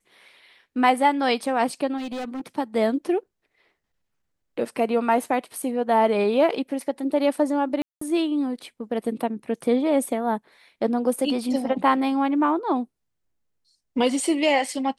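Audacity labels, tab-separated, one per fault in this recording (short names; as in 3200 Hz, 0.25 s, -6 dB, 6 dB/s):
1.970000	2.460000	clipped -28 dBFS
7.820000	8.010000	gap 0.194 s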